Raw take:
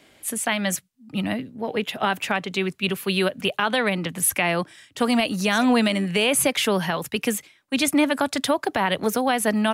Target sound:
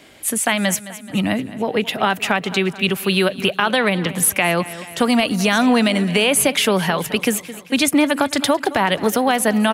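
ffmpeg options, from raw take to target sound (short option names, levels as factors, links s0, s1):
-filter_complex "[0:a]asplit=2[s0][s1];[s1]aecho=0:1:215|430|645|860|1075:0.126|0.068|0.0367|0.0198|0.0107[s2];[s0][s2]amix=inputs=2:normalize=0,acompressor=threshold=0.0447:ratio=1.5,volume=2.51"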